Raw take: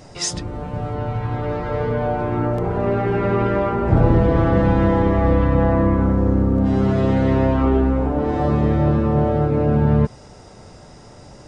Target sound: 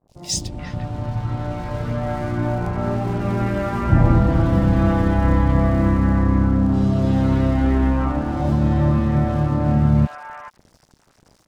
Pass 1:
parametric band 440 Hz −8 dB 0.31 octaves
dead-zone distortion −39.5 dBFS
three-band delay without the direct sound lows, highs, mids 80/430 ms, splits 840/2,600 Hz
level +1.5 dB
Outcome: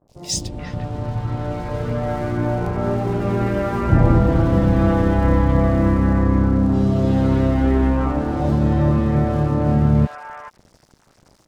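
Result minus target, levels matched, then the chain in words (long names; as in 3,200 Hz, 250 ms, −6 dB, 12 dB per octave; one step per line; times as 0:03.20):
500 Hz band +2.5 dB
parametric band 440 Hz −18.5 dB 0.31 octaves
dead-zone distortion −39.5 dBFS
three-band delay without the direct sound lows, highs, mids 80/430 ms, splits 840/2,600 Hz
level +1.5 dB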